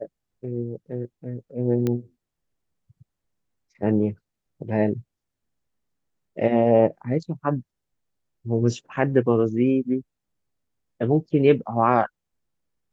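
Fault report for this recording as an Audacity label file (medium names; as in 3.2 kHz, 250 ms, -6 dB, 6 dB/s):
1.870000	1.870000	pop -13 dBFS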